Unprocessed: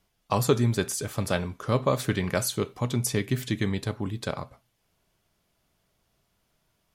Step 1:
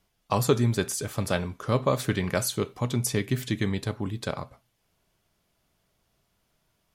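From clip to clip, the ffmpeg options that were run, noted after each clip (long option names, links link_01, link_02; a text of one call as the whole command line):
ffmpeg -i in.wav -af anull out.wav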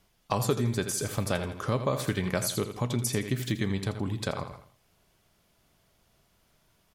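ffmpeg -i in.wav -af "aecho=1:1:82|164|246|328:0.282|0.0958|0.0326|0.0111,acompressor=threshold=-35dB:ratio=2,volume=4.5dB" out.wav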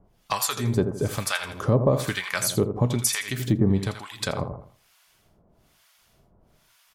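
ffmpeg -i in.wav -filter_complex "[0:a]asplit=2[link_01][link_02];[link_02]asoftclip=type=tanh:threshold=-22dB,volume=-6.5dB[link_03];[link_01][link_03]amix=inputs=2:normalize=0,acrossover=split=940[link_04][link_05];[link_04]aeval=exprs='val(0)*(1-1/2+1/2*cos(2*PI*1.1*n/s))':channel_layout=same[link_06];[link_05]aeval=exprs='val(0)*(1-1/2-1/2*cos(2*PI*1.1*n/s))':channel_layout=same[link_07];[link_06][link_07]amix=inputs=2:normalize=0,volume=7dB" out.wav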